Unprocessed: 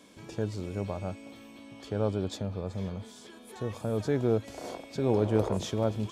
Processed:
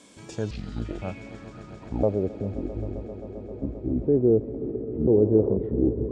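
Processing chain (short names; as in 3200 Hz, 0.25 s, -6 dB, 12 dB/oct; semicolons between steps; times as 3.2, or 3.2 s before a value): trilling pitch shifter -10 st, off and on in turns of 0.507 s; low-pass sweep 8500 Hz -> 390 Hz, 0.26–2.41; swelling echo 0.132 s, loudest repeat 5, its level -18 dB; gain +2 dB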